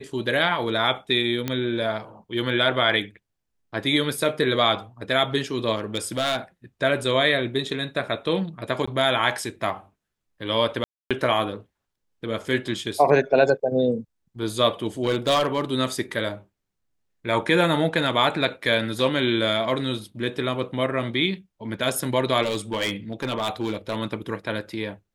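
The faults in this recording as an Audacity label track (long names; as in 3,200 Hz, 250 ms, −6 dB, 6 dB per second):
1.480000	1.480000	click −11 dBFS
5.750000	6.370000	clipping −18 dBFS
8.860000	8.880000	drop-out 15 ms
10.840000	11.110000	drop-out 266 ms
14.860000	15.610000	clipping −16 dBFS
22.420000	23.970000	clipping −20.5 dBFS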